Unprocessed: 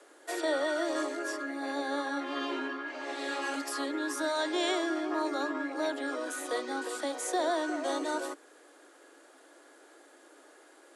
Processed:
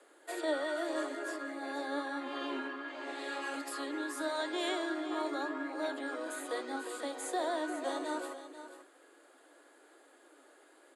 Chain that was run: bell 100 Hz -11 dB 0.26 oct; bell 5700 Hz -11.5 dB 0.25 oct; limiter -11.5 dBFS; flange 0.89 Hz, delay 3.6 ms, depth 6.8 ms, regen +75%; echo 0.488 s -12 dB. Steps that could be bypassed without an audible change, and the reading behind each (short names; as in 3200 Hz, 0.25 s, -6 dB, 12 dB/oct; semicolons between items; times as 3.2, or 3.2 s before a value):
bell 100 Hz: input band starts at 240 Hz; limiter -11.5 dBFS: input peak -18.5 dBFS